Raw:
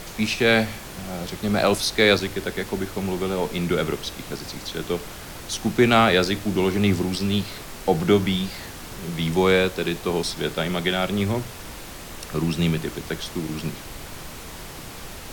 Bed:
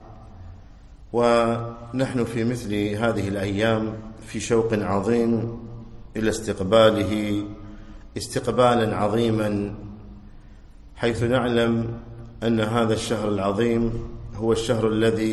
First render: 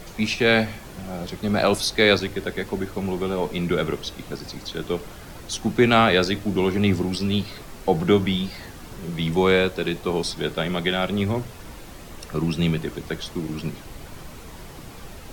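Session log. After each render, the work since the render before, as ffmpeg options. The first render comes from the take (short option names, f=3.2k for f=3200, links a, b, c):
-af "afftdn=nr=7:nf=-38"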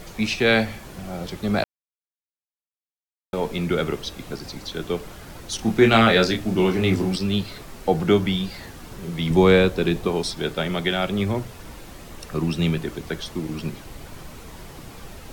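-filter_complex "[0:a]asettb=1/sr,asplit=3[a][b][c];[a]atrim=end=5.564[d];[b]atrim=start=5.56:end=7.16,asetpts=PTS-STARTPTS,afade=t=in:d=0.004:c=qsin,afade=t=out:st=1.596:d=0.004:c=qsin,asplit=2[e][f];[f]adelay=27,volume=-4dB[g];[e][g]amix=inputs=2:normalize=0,atrim=end_sample=70560[h];[c]atrim=start=7.156[i];[d][h]acrossfade=d=0.004:c1=hsin:c2=qsin[j];[j][i]acrossfade=d=0.004:c1=qsin:c2=hsin,asettb=1/sr,asplit=3[k][l][m];[k]atrim=end=9.304[n];[l]atrim=start=9.3:end=10.08,asetpts=PTS-STARTPTS,afade=t=in:d=0.004:c=qsin,afade=t=out:st=0.776:d=0.004:c=qsin,lowshelf=f=410:g=7[o];[m]atrim=start=10.076[p];[n][o]acrossfade=d=0.004:c1=hsin:c2=qsin[q];[q][p]acrossfade=d=0.004:c1=qsin:c2=hsin,asplit=3[r][s][t];[r]atrim=end=1.64,asetpts=PTS-STARTPTS,afade=t=out:st=1.636:d=0.004:c=hsin[u];[s]atrim=start=1.64:end=3.33,asetpts=PTS-STARTPTS,volume=0[v];[t]atrim=start=3.33,asetpts=PTS-STARTPTS,afade=t=in:d=0.004:c=hsin[w];[u][v][w]concat=n=3:v=0:a=1"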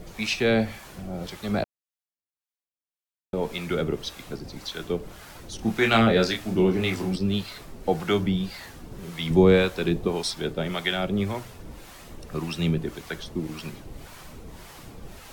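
-filter_complex "[0:a]acrossover=split=660[a][b];[a]aeval=exprs='val(0)*(1-0.7/2+0.7/2*cos(2*PI*1.8*n/s))':c=same[c];[b]aeval=exprs='val(0)*(1-0.7/2-0.7/2*cos(2*PI*1.8*n/s))':c=same[d];[c][d]amix=inputs=2:normalize=0"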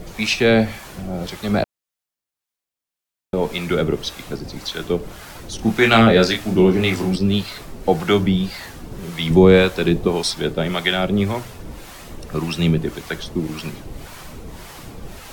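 -af "volume=7dB,alimiter=limit=-1dB:level=0:latency=1"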